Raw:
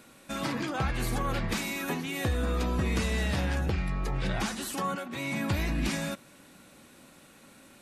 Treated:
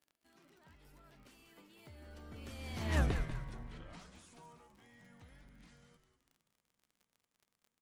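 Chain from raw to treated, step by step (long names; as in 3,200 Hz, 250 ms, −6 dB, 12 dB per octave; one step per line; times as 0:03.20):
source passing by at 0:03.00, 58 m/s, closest 3 metres
surface crackle 30 per second −55 dBFS
echo with shifted repeats 192 ms, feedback 37%, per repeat −100 Hz, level −9.5 dB
level +1 dB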